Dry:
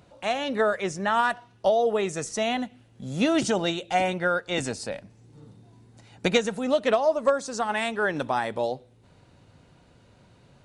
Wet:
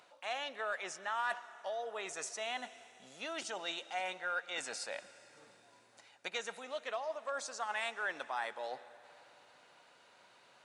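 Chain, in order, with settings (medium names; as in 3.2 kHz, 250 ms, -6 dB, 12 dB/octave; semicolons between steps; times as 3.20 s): reverse; compression 4:1, threshold -35 dBFS, peak gain reduction 16 dB; reverse; high-pass 1 kHz 12 dB/octave; tilt EQ -1.5 dB/octave; plate-style reverb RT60 3.4 s, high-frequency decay 0.95×, pre-delay 115 ms, DRR 16 dB; trim +3 dB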